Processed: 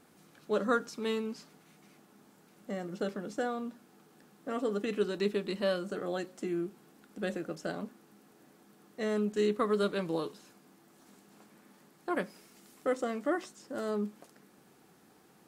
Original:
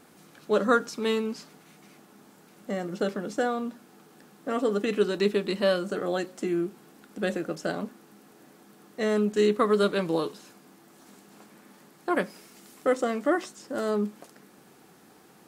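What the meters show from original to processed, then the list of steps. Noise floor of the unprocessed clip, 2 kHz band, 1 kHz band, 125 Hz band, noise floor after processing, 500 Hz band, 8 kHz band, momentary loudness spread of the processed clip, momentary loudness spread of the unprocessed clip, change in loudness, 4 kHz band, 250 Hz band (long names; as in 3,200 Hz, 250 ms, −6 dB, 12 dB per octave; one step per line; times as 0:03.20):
−56 dBFS, −7.0 dB, −7.0 dB, −5.5 dB, −62 dBFS, −6.5 dB, −7.0 dB, 13 LU, 13 LU, −6.5 dB, −7.0 dB, −6.0 dB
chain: low-shelf EQ 150 Hz +3.5 dB
level −7 dB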